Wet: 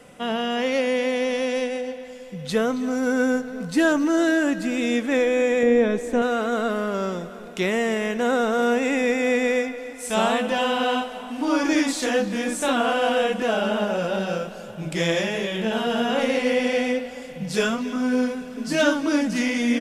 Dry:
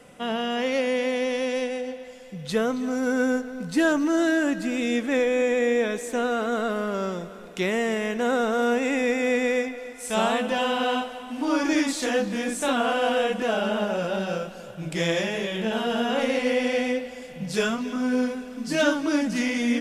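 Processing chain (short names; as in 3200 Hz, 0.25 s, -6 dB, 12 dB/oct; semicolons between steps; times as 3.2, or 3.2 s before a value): 5.63–6.22 tilt -2.5 dB/oct; outdoor echo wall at 170 m, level -21 dB; gain +2 dB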